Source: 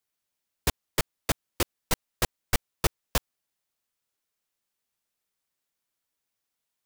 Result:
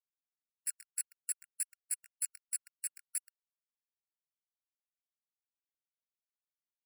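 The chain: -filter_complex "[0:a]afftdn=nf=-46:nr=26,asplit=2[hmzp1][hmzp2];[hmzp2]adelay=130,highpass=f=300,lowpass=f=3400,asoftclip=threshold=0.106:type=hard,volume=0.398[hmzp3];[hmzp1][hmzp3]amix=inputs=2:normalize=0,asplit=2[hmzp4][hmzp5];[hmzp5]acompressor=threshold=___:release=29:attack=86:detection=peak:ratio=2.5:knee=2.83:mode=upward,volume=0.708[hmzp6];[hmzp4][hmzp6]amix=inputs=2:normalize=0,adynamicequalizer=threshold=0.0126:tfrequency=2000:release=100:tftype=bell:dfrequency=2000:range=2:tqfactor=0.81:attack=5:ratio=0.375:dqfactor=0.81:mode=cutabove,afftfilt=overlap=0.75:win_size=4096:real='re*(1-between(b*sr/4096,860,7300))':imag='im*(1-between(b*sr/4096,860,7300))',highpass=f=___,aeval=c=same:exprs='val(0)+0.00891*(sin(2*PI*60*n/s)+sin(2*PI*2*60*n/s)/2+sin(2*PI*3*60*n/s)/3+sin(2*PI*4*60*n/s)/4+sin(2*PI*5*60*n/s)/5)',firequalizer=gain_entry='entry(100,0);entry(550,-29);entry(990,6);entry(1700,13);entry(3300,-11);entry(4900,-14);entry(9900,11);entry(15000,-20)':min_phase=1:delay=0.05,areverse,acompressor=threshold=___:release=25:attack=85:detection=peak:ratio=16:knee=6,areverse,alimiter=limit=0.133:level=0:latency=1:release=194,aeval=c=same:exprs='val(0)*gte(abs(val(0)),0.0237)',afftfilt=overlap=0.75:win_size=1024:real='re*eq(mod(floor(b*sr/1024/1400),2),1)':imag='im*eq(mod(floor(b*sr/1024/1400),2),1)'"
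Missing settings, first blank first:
0.0158, 70, 0.0158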